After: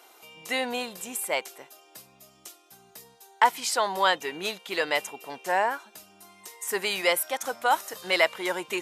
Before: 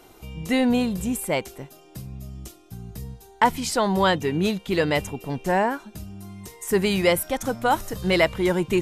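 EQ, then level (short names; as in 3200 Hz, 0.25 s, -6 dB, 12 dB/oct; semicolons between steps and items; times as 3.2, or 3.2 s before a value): HPF 670 Hz 12 dB/oct; 0.0 dB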